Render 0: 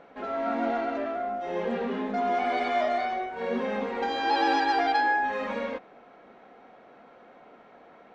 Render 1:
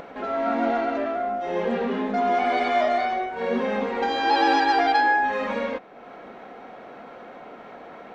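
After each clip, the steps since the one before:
upward compression, threshold −38 dBFS
level +4.5 dB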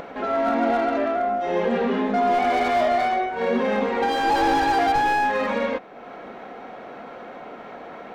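in parallel at −1 dB: brickwall limiter −18 dBFS, peak gain reduction 10 dB
on the sum: slew-rate limiting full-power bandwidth 160 Hz
level −2 dB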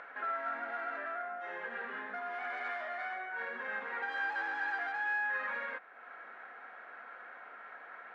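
downward compressor, threshold −22 dBFS, peak gain reduction 6.5 dB
resonant band-pass 1,600 Hz, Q 4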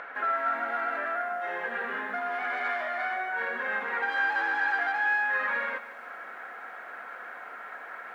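feedback echo at a low word length 154 ms, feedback 55%, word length 11 bits, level −13 dB
level +8 dB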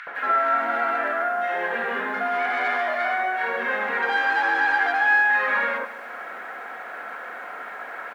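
multiband delay without the direct sound highs, lows 70 ms, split 1,500 Hz
level +8.5 dB

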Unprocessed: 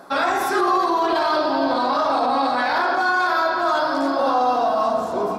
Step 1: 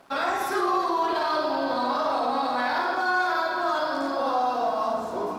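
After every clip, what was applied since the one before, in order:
dead-zone distortion −47.5 dBFS
on a send: flutter between parallel walls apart 9.1 metres, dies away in 0.42 s
on the sum: level −6 dB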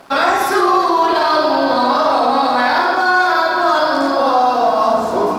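parametric band 4,800 Hz +2.5 dB 0.25 octaves
in parallel at +2.5 dB: speech leveller
on the sum: level +4 dB

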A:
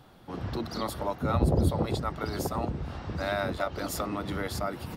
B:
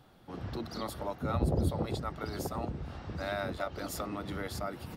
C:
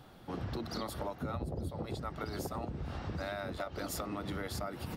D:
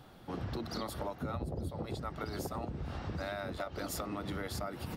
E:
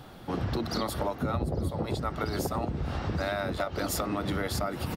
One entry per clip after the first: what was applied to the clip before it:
parametric band 1,000 Hz −2.5 dB 0.22 octaves; level −5 dB
downward compressor 10 to 1, threshold −39 dBFS, peak gain reduction 15.5 dB; level +4.5 dB
no processing that can be heard
slap from a distant wall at 140 metres, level −17 dB; level +8 dB

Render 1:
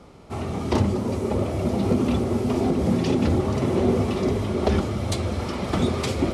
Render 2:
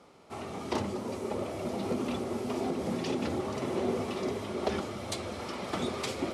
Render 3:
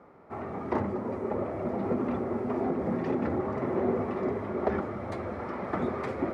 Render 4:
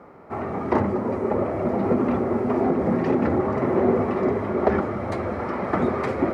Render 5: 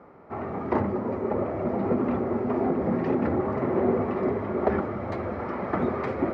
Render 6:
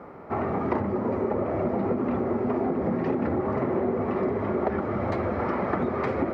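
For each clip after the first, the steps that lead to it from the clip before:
high-pass filter 420 Hz 6 dB per octave; level −5.5 dB
drawn EQ curve 1,900 Hz 0 dB, 3,000 Hz −19 dB, 7,600 Hz −25 dB; level +3 dB
notch filter 3,500 Hz, Q 22; level +8 dB
high-frequency loss of the air 120 metres; level −3.5 dB
downward compressor, threshold −30 dBFS, peak gain reduction 12 dB; level +7 dB

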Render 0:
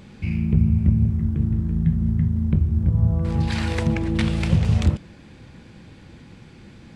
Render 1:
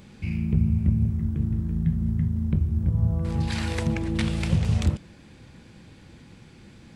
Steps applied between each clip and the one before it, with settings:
high-shelf EQ 6,200 Hz +7.5 dB
level −4 dB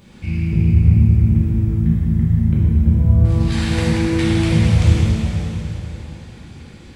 dense smooth reverb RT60 3.7 s, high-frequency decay 0.9×, DRR −8 dB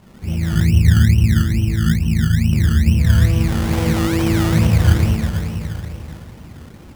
sample-and-hold swept by an LFO 22×, swing 60% 2.3 Hz

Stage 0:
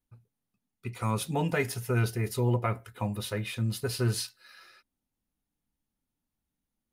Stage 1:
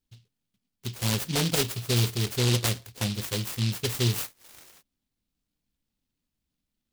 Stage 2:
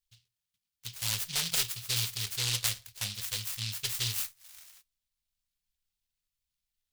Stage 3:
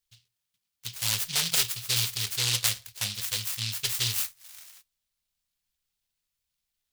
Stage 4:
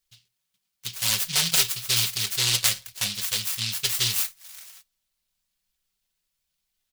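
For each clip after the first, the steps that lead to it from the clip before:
short delay modulated by noise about 3,600 Hz, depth 0.31 ms; level +2.5 dB
guitar amp tone stack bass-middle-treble 10-0-10; on a send at −18.5 dB: convolution reverb RT60 0.25 s, pre-delay 3 ms
low-shelf EQ 62 Hz −9 dB; level +4.5 dB
comb filter 5.3 ms, depth 48%; level +3 dB

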